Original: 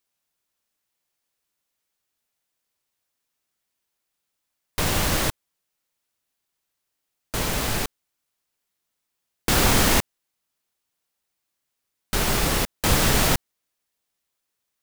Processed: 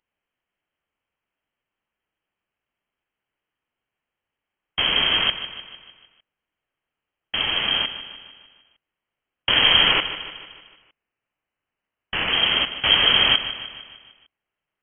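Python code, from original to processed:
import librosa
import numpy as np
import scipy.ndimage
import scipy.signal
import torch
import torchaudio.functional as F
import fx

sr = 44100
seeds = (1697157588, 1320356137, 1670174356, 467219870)

y = fx.highpass(x, sr, hz=130.0, slope=12, at=(9.91, 12.33))
y = fx.echo_feedback(y, sr, ms=151, feedback_pct=54, wet_db=-12.5)
y = fx.freq_invert(y, sr, carrier_hz=3200)
y = F.gain(torch.from_numpy(y), 2.0).numpy()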